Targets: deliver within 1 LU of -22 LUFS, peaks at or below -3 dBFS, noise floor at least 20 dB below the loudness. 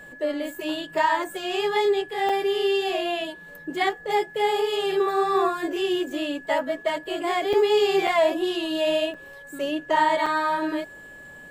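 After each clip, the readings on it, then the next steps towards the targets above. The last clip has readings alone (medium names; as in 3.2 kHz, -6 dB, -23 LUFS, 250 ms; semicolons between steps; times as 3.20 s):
dropouts 5; longest dropout 4.4 ms; steady tone 1.7 kHz; tone level -42 dBFS; loudness -24.0 LUFS; peak level -10.5 dBFS; loudness target -22.0 LUFS
-> interpolate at 2.29/7.53/8.07/9.14/10.26 s, 4.4 ms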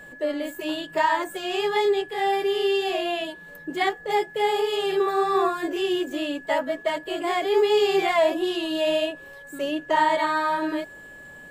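dropouts 0; steady tone 1.7 kHz; tone level -42 dBFS
-> band-stop 1.7 kHz, Q 30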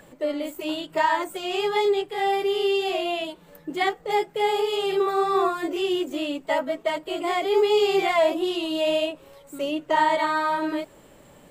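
steady tone not found; loudness -24.5 LUFS; peak level -10.5 dBFS; loudness target -22.0 LUFS
-> trim +2.5 dB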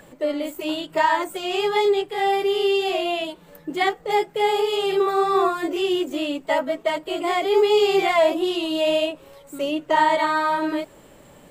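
loudness -22.0 LUFS; peak level -8.0 dBFS; noise floor -50 dBFS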